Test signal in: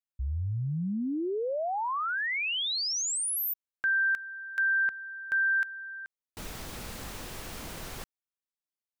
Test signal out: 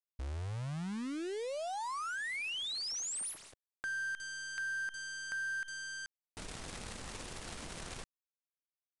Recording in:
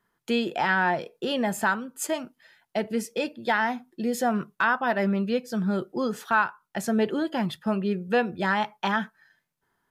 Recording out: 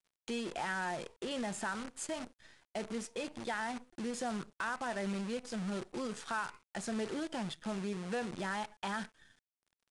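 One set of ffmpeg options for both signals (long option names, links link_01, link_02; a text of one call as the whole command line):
ffmpeg -i in.wav -af "acompressor=threshold=-46dB:ratio=2:attack=7.1:release=55:knee=1:detection=rms,acrusher=bits=8:dc=4:mix=0:aa=0.000001,aresample=22050,aresample=44100" out.wav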